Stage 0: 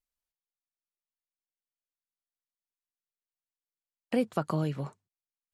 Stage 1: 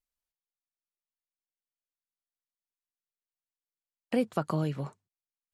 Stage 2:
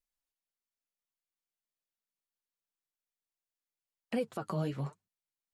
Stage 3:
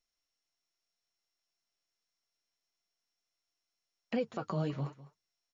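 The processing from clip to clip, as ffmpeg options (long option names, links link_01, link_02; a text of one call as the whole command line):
ffmpeg -i in.wav -af anull out.wav
ffmpeg -i in.wav -af "flanger=delay=3.9:depth=7.7:regen=26:speed=0.98:shape=triangular,alimiter=level_in=2dB:limit=-24dB:level=0:latency=1:release=61,volume=-2dB,volume=2dB" out.wav
ffmpeg -i in.wav -af "aecho=1:1:203:0.133" -ar 22050 -c:a mp2 -b:a 96k out.mp2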